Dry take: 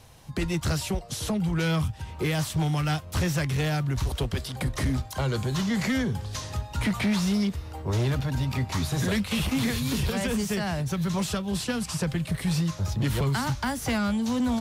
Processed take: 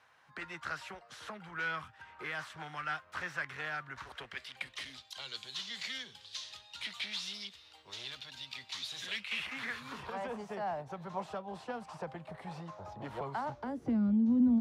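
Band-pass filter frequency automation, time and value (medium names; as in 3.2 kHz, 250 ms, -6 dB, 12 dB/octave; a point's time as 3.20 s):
band-pass filter, Q 2.5
4.09 s 1.5 kHz
4.96 s 3.6 kHz
8.93 s 3.6 kHz
10.32 s 780 Hz
13.39 s 780 Hz
13.98 s 240 Hz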